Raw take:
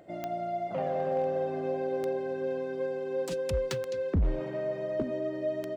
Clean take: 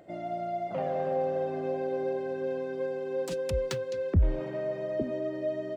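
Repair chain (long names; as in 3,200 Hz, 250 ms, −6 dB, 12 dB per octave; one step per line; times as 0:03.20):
clipped peaks rebuilt −21.5 dBFS
click removal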